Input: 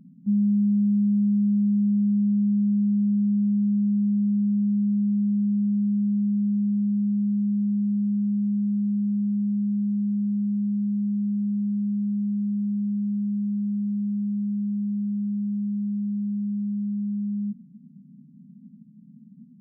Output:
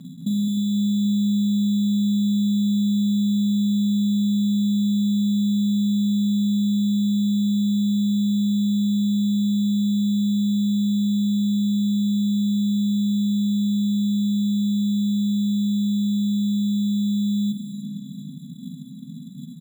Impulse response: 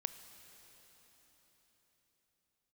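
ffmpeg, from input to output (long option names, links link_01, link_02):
-filter_complex "[0:a]highpass=frequency=68:width=0.5412,highpass=frequency=68:width=1.3066,aecho=1:1:7.2:0.52,acompressor=threshold=-32dB:ratio=6,acrusher=samples=12:mix=1:aa=0.000001,aecho=1:1:43|213|307|782:0.376|0.473|0.299|0.168,asplit=2[link_01][link_02];[1:a]atrim=start_sample=2205[link_03];[link_02][link_03]afir=irnorm=-1:irlink=0,volume=8.5dB[link_04];[link_01][link_04]amix=inputs=2:normalize=0"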